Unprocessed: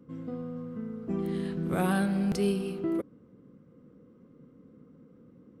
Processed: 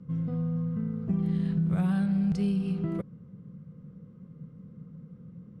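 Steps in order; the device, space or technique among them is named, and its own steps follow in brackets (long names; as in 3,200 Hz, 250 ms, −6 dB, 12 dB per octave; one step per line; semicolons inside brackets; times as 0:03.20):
jukebox (low-pass filter 7,200 Hz 12 dB per octave; low shelf with overshoot 220 Hz +8.5 dB, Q 3; downward compressor 4 to 1, threshold −25 dBFS, peak gain reduction 10 dB)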